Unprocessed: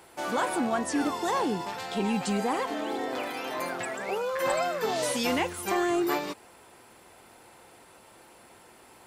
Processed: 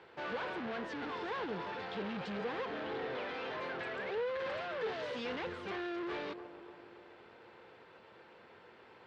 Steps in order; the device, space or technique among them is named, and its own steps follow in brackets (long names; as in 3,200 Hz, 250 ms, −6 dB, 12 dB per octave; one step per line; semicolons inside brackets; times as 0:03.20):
analogue delay pedal into a guitar amplifier (bucket-brigade delay 284 ms, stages 2,048, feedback 57%, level −20 dB; tube saturation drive 38 dB, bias 0.75; loudspeaker in its box 81–3,900 Hz, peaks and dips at 280 Hz −4 dB, 460 Hz +7 dB, 720 Hz −4 dB, 1,600 Hz +4 dB)